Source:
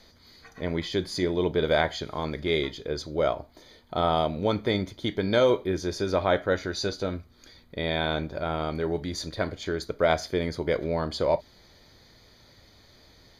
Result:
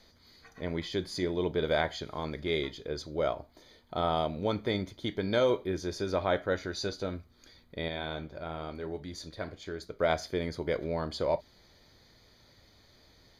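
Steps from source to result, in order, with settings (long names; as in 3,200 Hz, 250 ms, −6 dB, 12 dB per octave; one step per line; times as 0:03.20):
0:07.88–0:10.00: flanger 1 Hz, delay 8.2 ms, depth 5 ms, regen −76%
level −5 dB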